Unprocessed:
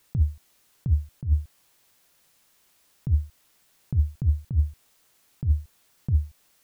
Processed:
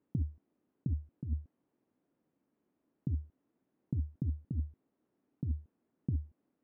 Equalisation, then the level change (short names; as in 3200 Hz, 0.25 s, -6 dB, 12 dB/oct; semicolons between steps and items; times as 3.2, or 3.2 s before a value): band-pass 270 Hz, Q 2.6; air absorption 410 m; +5.5 dB